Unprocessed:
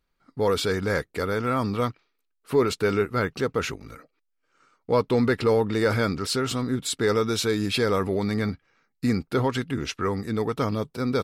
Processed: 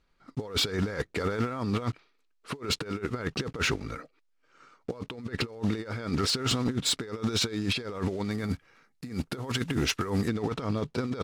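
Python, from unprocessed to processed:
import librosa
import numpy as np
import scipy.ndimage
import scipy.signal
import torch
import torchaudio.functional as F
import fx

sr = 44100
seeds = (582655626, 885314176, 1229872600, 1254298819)

y = fx.block_float(x, sr, bits=5)
y = fx.lowpass(y, sr, hz=fx.steps((0.0, 6500.0), (8.31, 11000.0), (10.28, 5500.0)), slope=12)
y = fx.over_compress(y, sr, threshold_db=-29.0, ratio=-0.5)
y = np.clip(y, -10.0 ** (-20.5 / 20.0), 10.0 ** (-20.5 / 20.0))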